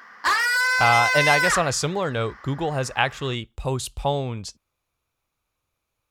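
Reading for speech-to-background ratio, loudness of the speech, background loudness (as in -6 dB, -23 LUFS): -4.0 dB, -24.0 LUFS, -20.0 LUFS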